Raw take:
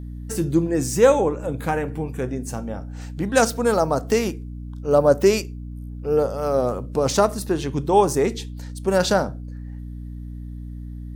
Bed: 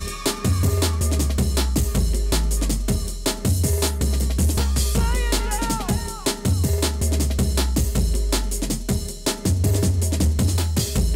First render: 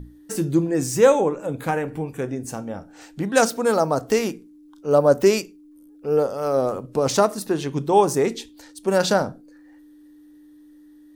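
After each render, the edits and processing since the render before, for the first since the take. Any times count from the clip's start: notches 60/120/180/240 Hz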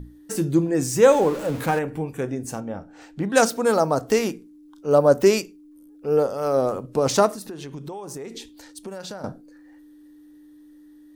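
1.09–1.79 zero-crossing step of -30.5 dBFS; 2.6–3.3 high shelf 5000 Hz -11 dB; 7.31–9.24 compressor 16:1, threshold -31 dBFS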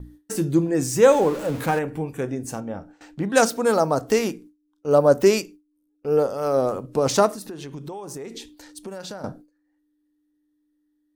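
gate with hold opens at -36 dBFS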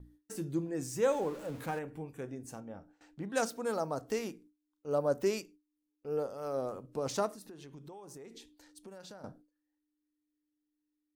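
gain -14.5 dB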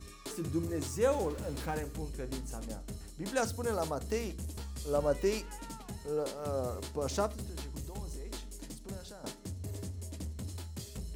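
add bed -21.5 dB

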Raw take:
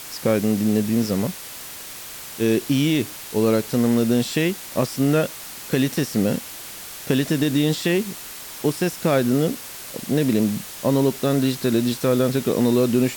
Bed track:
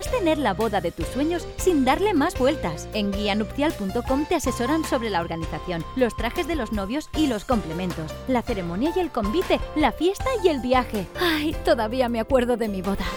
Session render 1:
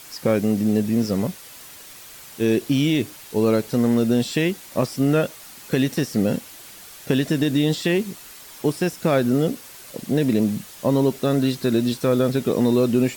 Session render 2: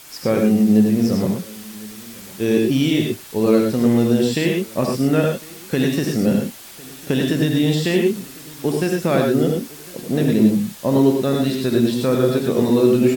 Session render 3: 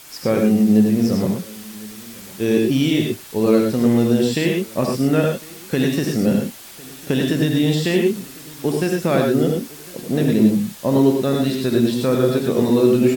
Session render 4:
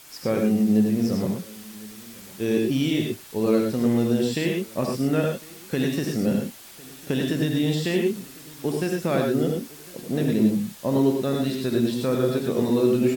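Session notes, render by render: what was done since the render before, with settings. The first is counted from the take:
denoiser 7 dB, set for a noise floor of -37 dBFS
echo 1.054 s -22.5 dB; non-linear reverb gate 0.13 s rising, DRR 1.5 dB
nothing audible
gain -5.5 dB

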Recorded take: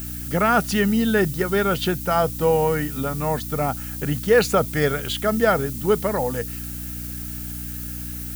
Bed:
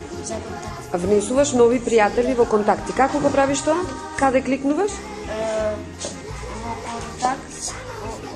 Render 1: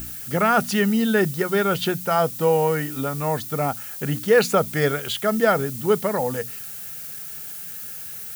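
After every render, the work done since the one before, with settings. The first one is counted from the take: de-hum 60 Hz, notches 5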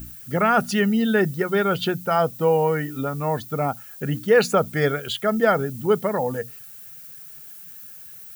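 denoiser 10 dB, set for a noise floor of -35 dBFS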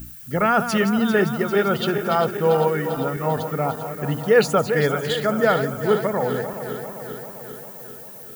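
regenerating reverse delay 0.198 s, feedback 79%, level -10 dB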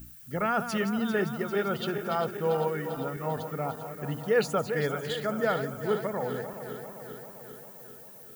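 gain -9 dB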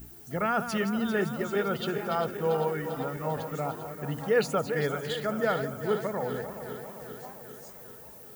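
add bed -26.5 dB

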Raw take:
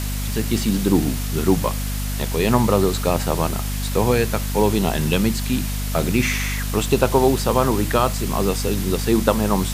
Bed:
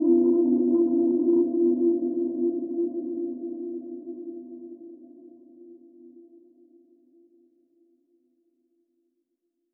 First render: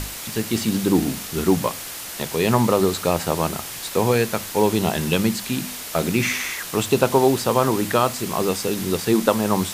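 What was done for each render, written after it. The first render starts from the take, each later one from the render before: notches 50/100/150/200/250 Hz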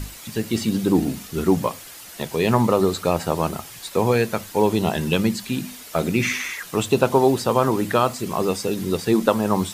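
denoiser 9 dB, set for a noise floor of -33 dBFS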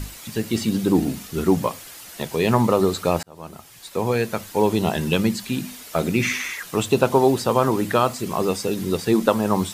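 3.23–4.98 fade in equal-power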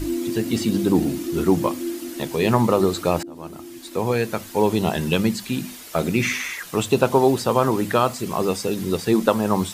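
add bed -6 dB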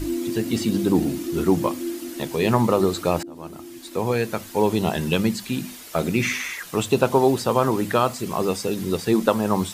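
gain -1 dB

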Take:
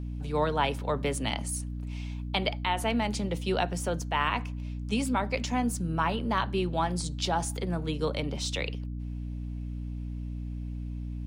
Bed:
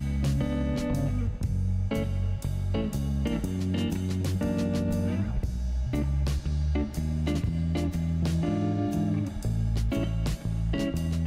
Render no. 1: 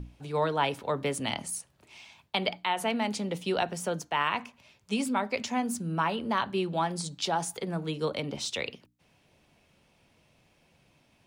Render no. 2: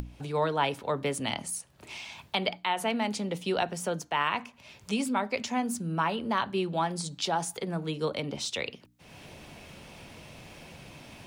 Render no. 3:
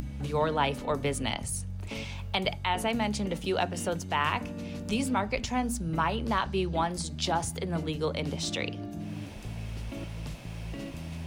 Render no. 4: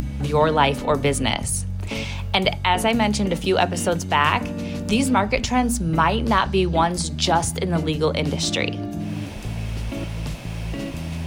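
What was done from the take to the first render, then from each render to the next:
notches 60/120/180/240/300 Hz
upward compressor, threshold -32 dBFS
add bed -10.5 dB
gain +9.5 dB

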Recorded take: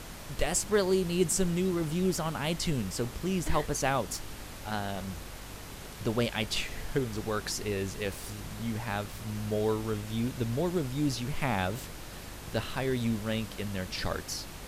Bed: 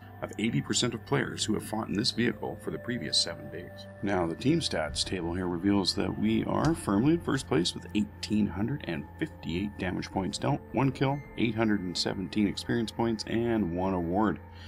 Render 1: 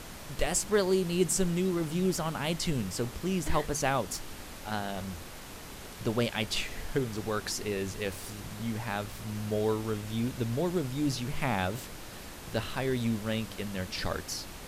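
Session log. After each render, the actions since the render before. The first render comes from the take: de-hum 50 Hz, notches 3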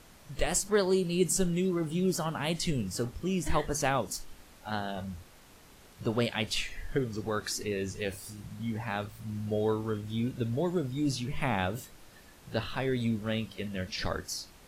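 noise print and reduce 11 dB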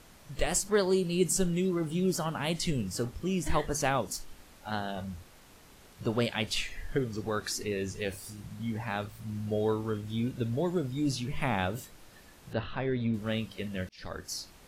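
12.53–13.14 air absorption 260 m; 13.89–14.37 fade in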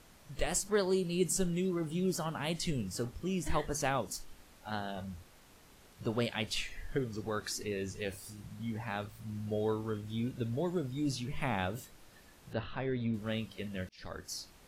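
gain -4 dB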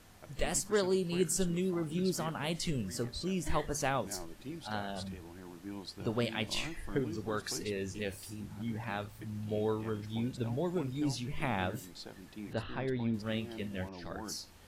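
add bed -18 dB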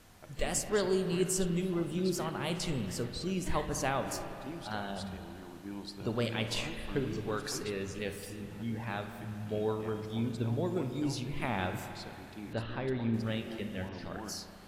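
spring tank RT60 3 s, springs 35/53 ms, chirp 20 ms, DRR 6.5 dB

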